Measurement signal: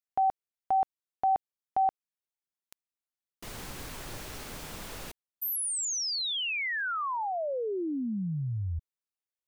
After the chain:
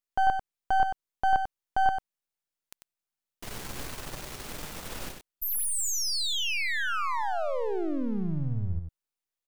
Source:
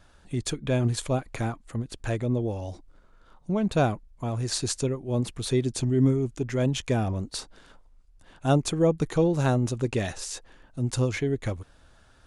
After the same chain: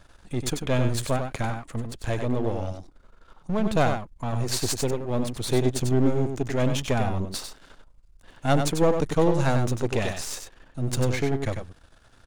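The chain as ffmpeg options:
-filter_complex "[0:a]aeval=exprs='if(lt(val(0),0),0.251*val(0),val(0))':c=same,asplit=2[s0][s1];[s1]aecho=0:1:95:0.473[s2];[s0][s2]amix=inputs=2:normalize=0,volume=1.68"

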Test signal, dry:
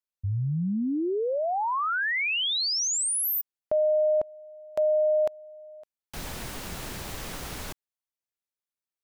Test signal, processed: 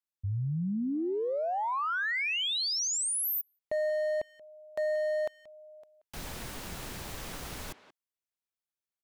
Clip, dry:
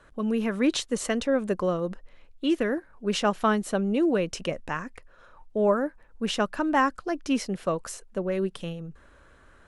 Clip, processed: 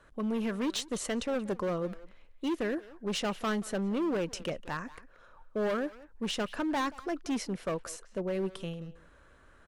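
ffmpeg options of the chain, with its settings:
-filter_complex "[0:a]asoftclip=type=hard:threshold=0.0668,asplit=2[s0][s1];[s1]adelay=180,highpass=300,lowpass=3400,asoftclip=type=hard:threshold=0.0251,volume=0.224[s2];[s0][s2]amix=inputs=2:normalize=0,volume=0.631"

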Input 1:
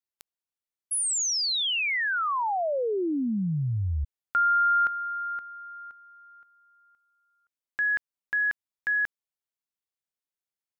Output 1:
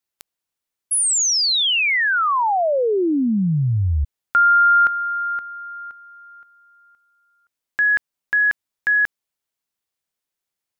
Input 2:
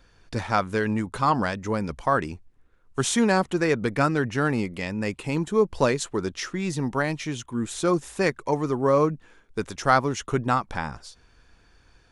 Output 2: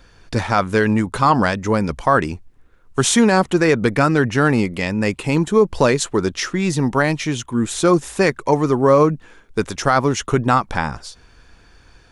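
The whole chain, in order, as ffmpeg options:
-af "alimiter=level_in=3.55:limit=0.891:release=50:level=0:latency=1,volume=0.75"

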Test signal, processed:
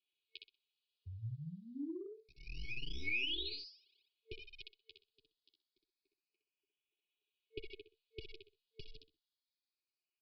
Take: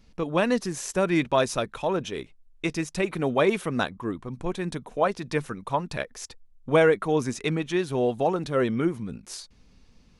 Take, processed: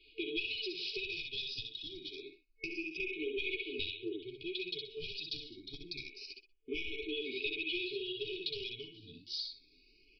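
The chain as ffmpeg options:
-filter_complex "[0:a]asplit=2[s0][s1];[s1]aecho=0:1:63|126|189:0.596|0.125|0.0263[s2];[s0][s2]amix=inputs=2:normalize=0,flanger=delay=5.1:depth=8.4:regen=10:speed=1.7:shape=triangular,equalizer=f=150:w=0.95:g=-12,acrossover=split=90|1100[s3][s4][s5];[s3]acompressor=threshold=0.00126:ratio=4[s6];[s4]acompressor=threshold=0.0178:ratio=4[s7];[s5]acompressor=threshold=0.0316:ratio=4[s8];[s6][s7][s8]amix=inputs=3:normalize=0,lowpass=f=3900:w=0.5412,lowpass=f=3900:w=1.3066,aemphasis=mode=production:type=riaa,aresample=11025,aeval=exprs='clip(val(0),-1,0.0266)':c=same,aresample=44100,aecho=1:1:2.4:0.93,afftfilt=real='re*(1-between(b*sr/4096,450,2200))':imag='im*(1-between(b*sr/4096,450,2200))':win_size=4096:overlap=0.75,acompressor=threshold=0.01:ratio=10,asplit=2[s9][s10];[s10]afreqshift=0.27[s11];[s9][s11]amix=inputs=2:normalize=1,volume=2.24"

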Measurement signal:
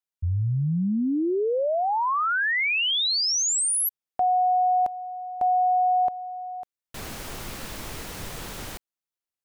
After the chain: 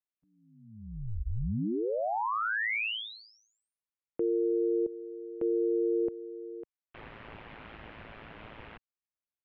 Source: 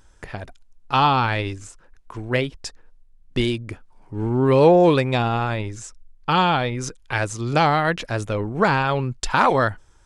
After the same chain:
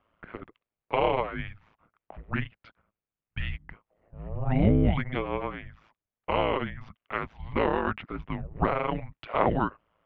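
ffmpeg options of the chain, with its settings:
-af "highpass=f=280:t=q:w=0.5412,highpass=f=280:t=q:w=1.307,lowpass=f=3200:t=q:w=0.5176,lowpass=f=3200:t=q:w=0.7071,lowpass=f=3200:t=q:w=1.932,afreqshift=-330,aeval=exprs='val(0)*sin(2*PI*55*n/s)':c=same,volume=0.631"

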